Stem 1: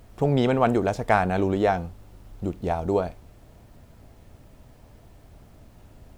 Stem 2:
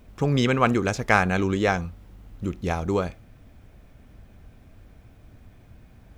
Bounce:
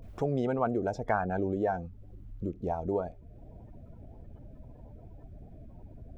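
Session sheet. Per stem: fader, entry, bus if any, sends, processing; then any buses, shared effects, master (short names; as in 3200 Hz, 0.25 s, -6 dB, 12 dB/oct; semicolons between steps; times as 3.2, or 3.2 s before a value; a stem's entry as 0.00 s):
+2.0 dB, 0.00 s, no send, spectral gate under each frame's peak -20 dB strong
-4.0 dB, 0.00 s, polarity flipped, no send, gate with hold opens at -43 dBFS; low shelf 180 Hz +6 dB; compressor, threshold -21 dBFS, peak gain reduction 9 dB; auto duck -12 dB, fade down 1.00 s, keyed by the first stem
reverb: off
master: compressor 1.5:1, threshold -43 dBFS, peak gain reduction 11 dB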